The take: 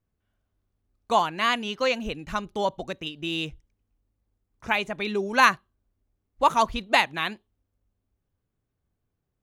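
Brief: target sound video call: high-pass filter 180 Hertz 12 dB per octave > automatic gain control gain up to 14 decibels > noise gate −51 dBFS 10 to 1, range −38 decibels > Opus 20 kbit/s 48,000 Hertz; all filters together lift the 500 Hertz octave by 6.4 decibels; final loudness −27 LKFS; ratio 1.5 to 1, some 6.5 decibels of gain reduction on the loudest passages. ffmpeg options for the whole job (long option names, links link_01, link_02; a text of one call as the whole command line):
ffmpeg -i in.wav -af "equalizer=frequency=500:width_type=o:gain=8,acompressor=threshold=-29dB:ratio=1.5,highpass=180,dynaudnorm=maxgain=14dB,agate=range=-38dB:threshold=-51dB:ratio=10,volume=1dB" -ar 48000 -c:a libopus -b:a 20k out.opus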